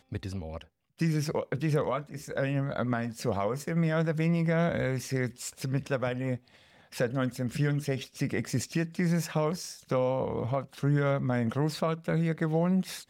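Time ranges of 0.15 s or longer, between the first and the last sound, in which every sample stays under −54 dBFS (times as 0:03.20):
0:00.67–0:00.98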